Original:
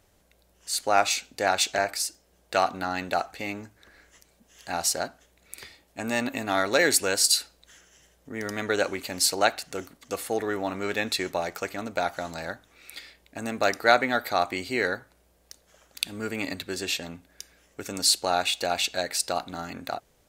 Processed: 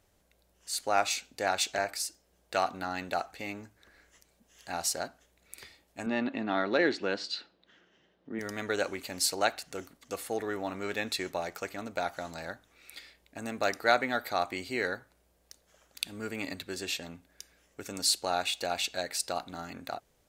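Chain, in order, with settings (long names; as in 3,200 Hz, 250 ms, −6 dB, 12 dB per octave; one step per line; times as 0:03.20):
0:06.06–0:08.39: loudspeaker in its box 130–3,800 Hz, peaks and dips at 210 Hz +8 dB, 340 Hz +7 dB, 2,300 Hz −4 dB
level −5.5 dB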